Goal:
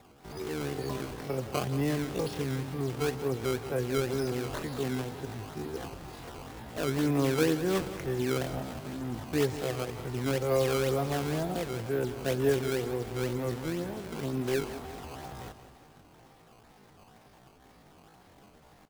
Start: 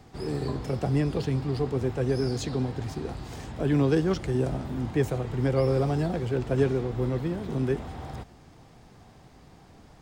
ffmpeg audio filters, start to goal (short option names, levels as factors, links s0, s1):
-af "lowpass=6800,lowshelf=f=250:g=-10,acrusher=samples=14:mix=1:aa=0.000001:lfo=1:lforange=22.4:lforate=3.9,atempo=0.53,aecho=1:1:179|358|537|716|895|1074:0.224|0.125|0.0702|0.0393|0.022|0.0123"